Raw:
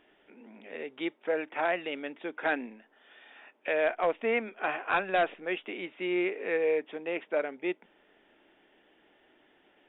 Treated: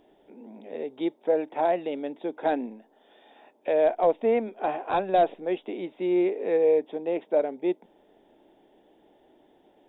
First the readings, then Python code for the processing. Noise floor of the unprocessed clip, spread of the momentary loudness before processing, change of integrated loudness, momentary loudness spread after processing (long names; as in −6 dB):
−66 dBFS, 12 LU, +5.0 dB, 13 LU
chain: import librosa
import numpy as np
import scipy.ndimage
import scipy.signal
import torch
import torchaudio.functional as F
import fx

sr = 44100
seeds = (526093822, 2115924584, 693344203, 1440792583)

y = fx.band_shelf(x, sr, hz=1900.0, db=-15.0, octaves=1.7)
y = y * librosa.db_to_amplitude(6.5)